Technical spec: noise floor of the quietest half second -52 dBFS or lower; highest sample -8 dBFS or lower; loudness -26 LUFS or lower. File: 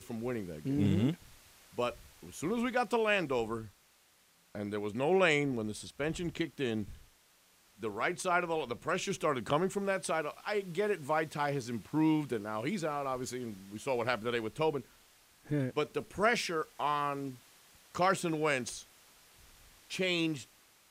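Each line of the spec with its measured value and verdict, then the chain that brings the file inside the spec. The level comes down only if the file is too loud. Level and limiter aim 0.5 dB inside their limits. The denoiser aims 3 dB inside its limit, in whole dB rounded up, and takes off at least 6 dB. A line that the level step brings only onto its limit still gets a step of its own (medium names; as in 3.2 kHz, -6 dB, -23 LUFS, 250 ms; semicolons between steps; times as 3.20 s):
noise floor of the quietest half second -67 dBFS: pass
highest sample -13.0 dBFS: pass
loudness -33.5 LUFS: pass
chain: none needed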